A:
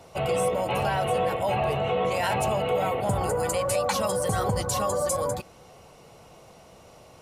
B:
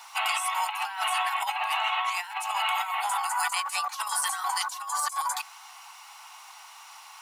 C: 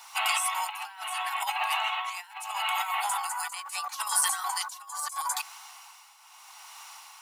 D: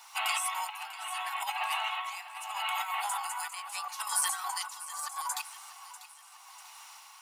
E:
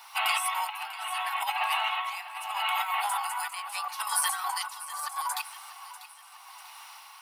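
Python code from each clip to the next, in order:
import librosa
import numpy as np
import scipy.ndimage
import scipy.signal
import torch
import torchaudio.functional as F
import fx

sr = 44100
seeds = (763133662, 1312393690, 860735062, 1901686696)

y1 = scipy.signal.sosfilt(scipy.signal.butter(12, 830.0, 'highpass', fs=sr, output='sos'), x)
y1 = fx.over_compress(y1, sr, threshold_db=-35.0, ratio=-0.5)
y1 = fx.dmg_noise_colour(y1, sr, seeds[0], colour='blue', level_db=-76.0)
y1 = F.gain(torch.from_numpy(y1), 6.5).numpy()
y2 = fx.hum_notches(y1, sr, base_hz=50, count=3)
y2 = fx.tremolo_shape(y2, sr, shape='triangle', hz=0.77, depth_pct=75)
y2 = fx.high_shelf(y2, sr, hz=4600.0, db=5.5)
y3 = fx.echo_feedback(y2, sr, ms=644, feedback_pct=50, wet_db=-15.0)
y3 = F.gain(torch.from_numpy(y3), -4.0).numpy()
y4 = fx.peak_eq(y3, sr, hz=7000.0, db=-11.0, octaves=0.53)
y4 = F.gain(torch.from_numpy(y4), 4.5).numpy()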